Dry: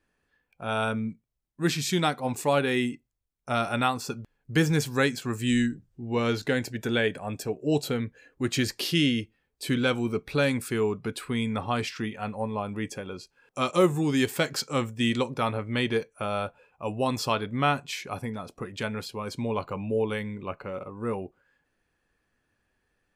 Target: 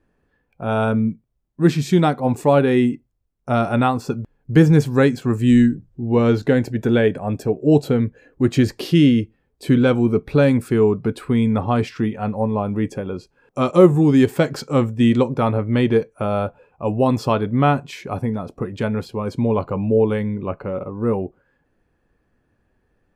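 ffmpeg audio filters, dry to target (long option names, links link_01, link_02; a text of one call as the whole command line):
ffmpeg -i in.wav -af "tiltshelf=frequency=1300:gain=8,volume=4dB" out.wav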